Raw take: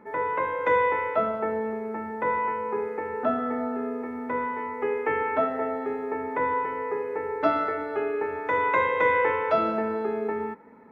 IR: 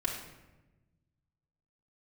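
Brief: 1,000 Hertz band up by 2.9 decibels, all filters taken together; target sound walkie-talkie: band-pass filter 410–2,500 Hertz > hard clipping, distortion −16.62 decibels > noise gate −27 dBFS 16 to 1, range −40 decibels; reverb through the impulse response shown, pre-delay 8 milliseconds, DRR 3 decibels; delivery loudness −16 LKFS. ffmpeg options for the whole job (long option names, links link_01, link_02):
-filter_complex "[0:a]equalizer=frequency=1000:width_type=o:gain=3.5,asplit=2[link_01][link_02];[1:a]atrim=start_sample=2205,adelay=8[link_03];[link_02][link_03]afir=irnorm=-1:irlink=0,volume=-8dB[link_04];[link_01][link_04]amix=inputs=2:normalize=0,highpass=410,lowpass=2500,asoftclip=type=hard:threshold=-16.5dB,agate=range=-40dB:threshold=-27dB:ratio=16,volume=10dB"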